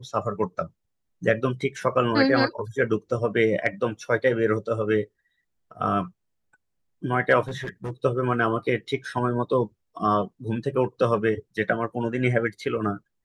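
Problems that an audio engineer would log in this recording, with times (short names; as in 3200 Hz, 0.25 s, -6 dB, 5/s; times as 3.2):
7.48–7.91 clipped -27 dBFS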